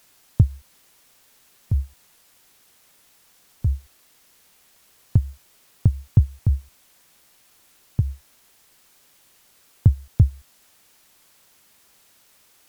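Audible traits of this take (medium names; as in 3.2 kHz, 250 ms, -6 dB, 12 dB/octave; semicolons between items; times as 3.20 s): tremolo triangle 5.7 Hz, depth 75%; a quantiser's noise floor 10-bit, dither triangular; Vorbis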